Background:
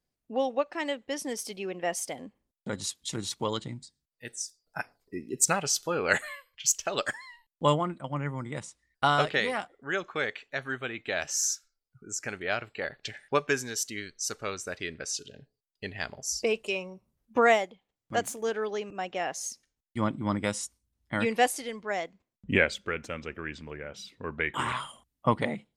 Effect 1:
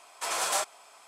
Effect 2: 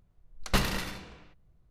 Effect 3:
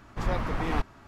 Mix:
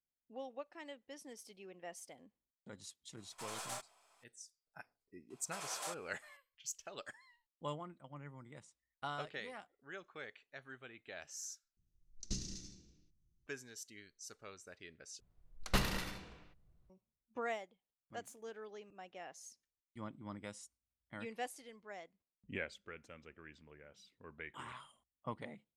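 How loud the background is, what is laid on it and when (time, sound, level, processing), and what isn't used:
background -18.5 dB
3.17 add 1 -15 dB + half-wave gain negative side -3 dB
5.3 add 1 -15.5 dB
11.77 replace with 2 -14 dB + EQ curve 350 Hz 0 dB, 490 Hz -15 dB, 1000 Hz -27 dB, 2000 Hz -18 dB, 3200 Hz -10 dB, 6200 Hz +13 dB, 13000 Hz -23 dB
15.2 replace with 2 -6.5 dB
not used: 3

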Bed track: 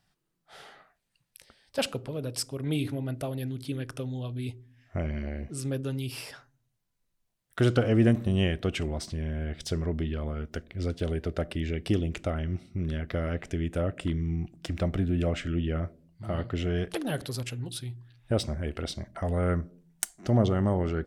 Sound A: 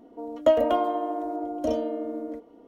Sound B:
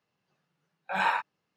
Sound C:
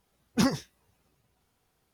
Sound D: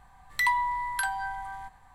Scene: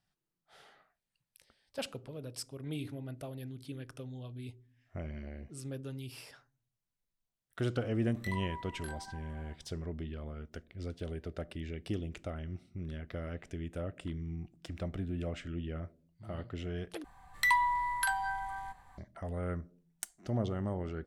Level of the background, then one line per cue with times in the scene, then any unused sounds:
bed track -10 dB
7.85 add D -13.5 dB + chorus 1.4 Hz, delay 18.5 ms, depth 3.8 ms
17.04 replace with D -2 dB
not used: A, B, C

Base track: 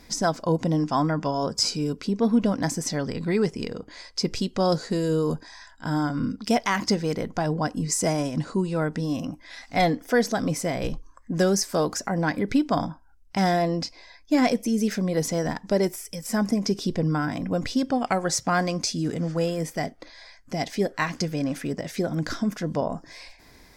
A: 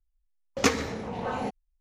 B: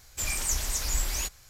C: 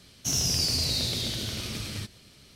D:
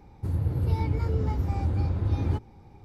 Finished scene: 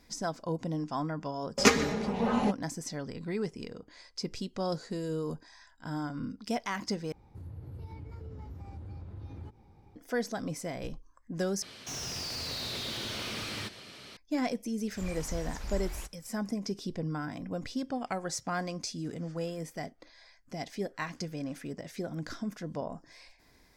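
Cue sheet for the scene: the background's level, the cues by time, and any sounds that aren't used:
base track -10.5 dB
1.01 add A + comb 4.9 ms, depth 66%
7.12 replace with D -7.5 dB + compressor 2:1, threshold -41 dBFS
11.62 replace with C -9.5 dB + overdrive pedal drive 29 dB, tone 1800 Hz, clips at -14.5 dBFS
14.79 add B -5.5 dB + LPF 1300 Hz 6 dB/oct

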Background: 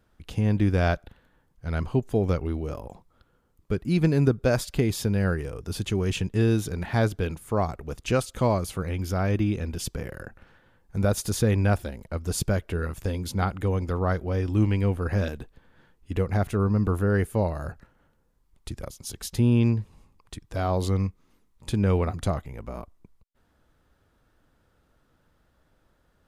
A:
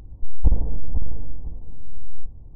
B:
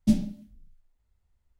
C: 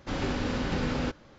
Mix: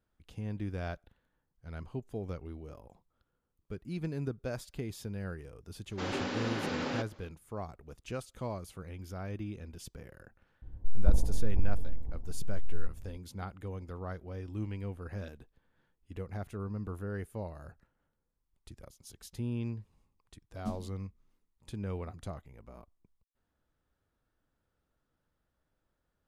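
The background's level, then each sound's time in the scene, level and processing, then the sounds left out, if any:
background -15 dB
5.91 add C -2.5 dB + HPF 240 Hz
10.62 add A -6 dB
20.58 add B -16.5 dB

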